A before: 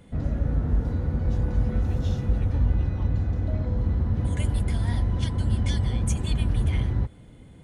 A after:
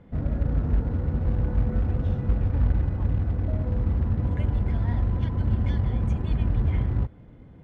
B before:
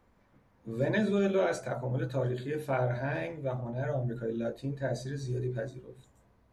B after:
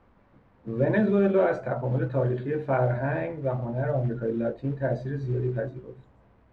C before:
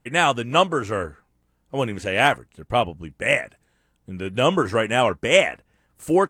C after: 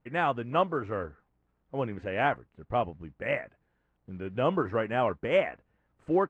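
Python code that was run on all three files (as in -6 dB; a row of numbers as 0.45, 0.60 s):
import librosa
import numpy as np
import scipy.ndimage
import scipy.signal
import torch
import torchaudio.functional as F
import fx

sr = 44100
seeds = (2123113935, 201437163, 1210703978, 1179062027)

y = fx.quant_companded(x, sr, bits=6)
y = scipy.signal.sosfilt(scipy.signal.butter(2, 1700.0, 'lowpass', fs=sr, output='sos'), y)
y = librosa.util.normalize(y) * 10.0 ** (-12 / 20.0)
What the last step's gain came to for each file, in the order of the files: 0.0, +6.0, -7.5 dB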